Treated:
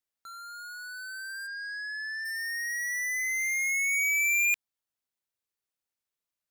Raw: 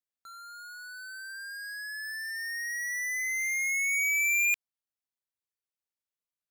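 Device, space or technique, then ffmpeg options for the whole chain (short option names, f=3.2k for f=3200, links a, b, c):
parallel distortion: -filter_complex "[0:a]asplit=3[a][b][c];[a]afade=t=out:st=1.46:d=0.02[d];[b]lowpass=f=5.3k:w=0.5412,lowpass=f=5.3k:w=1.3066,afade=t=in:st=1.46:d=0.02,afade=t=out:st=2.24:d=0.02[e];[c]afade=t=in:st=2.24:d=0.02[f];[d][e][f]amix=inputs=3:normalize=0,asplit=2[g][h];[h]asoftclip=type=hard:threshold=-39.5dB,volume=-8dB[i];[g][i]amix=inputs=2:normalize=0"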